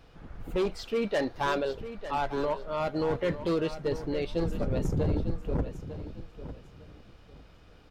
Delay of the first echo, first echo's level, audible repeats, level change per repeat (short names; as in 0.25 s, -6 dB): 0.901 s, -12.0 dB, 2, -12.5 dB